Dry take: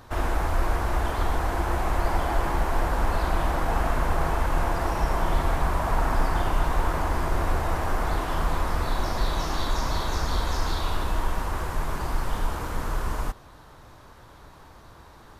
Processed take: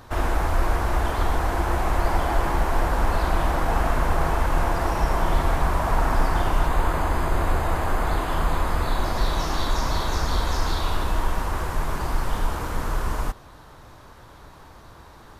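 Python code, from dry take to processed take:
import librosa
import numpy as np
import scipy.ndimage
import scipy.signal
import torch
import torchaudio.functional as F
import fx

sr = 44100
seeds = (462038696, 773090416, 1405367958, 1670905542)

y = fx.notch(x, sr, hz=5600.0, q=5.7, at=(6.66, 9.16))
y = y * librosa.db_to_amplitude(2.5)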